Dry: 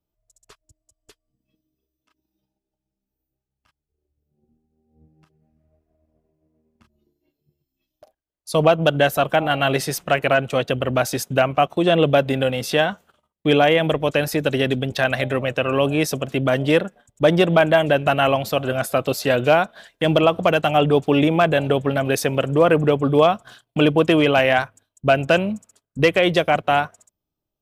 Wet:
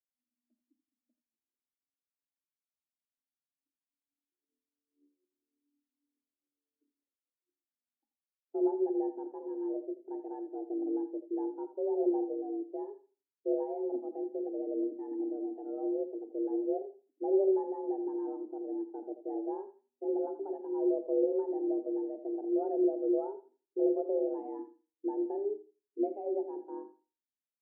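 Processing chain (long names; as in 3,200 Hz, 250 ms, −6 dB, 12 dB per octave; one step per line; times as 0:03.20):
frequency shifter +210 Hz
flat-topped band-pass 180 Hz, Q 0.92
on a send: feedback echo with a high-pass in the loop 83 ms, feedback 34%, high-pass 160 Hz, level −9 dB
on the sum: four-comb reverb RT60 0.4 s, combs from 28 ms, DRR 10.5 dB
every bin expanded away from the loudest bin 1.5 to 1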